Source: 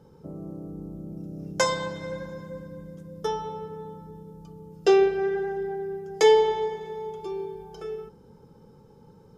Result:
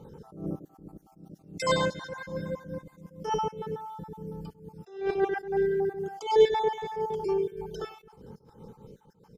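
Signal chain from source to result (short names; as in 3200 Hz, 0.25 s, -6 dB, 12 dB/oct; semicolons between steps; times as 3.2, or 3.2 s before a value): random spectral dropouts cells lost 38%; feedback echo 96 ms, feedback 20%, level -21 dB; attack slew limiter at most 130 dB/s; gain +6 dB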